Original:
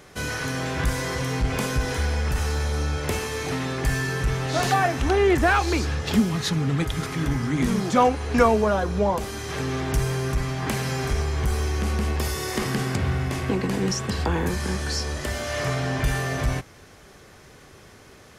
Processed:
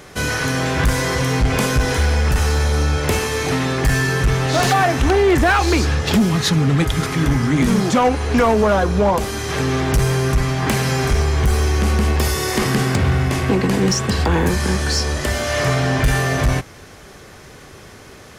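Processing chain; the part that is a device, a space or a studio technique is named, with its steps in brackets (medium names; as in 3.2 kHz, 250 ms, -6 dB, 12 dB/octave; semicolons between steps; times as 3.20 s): limiter into clipper (peak limiter -13 dBFS, peak gain reduction 6 dB; hard clipper -18 dBFS, distortion -19 dB); trim +8 dB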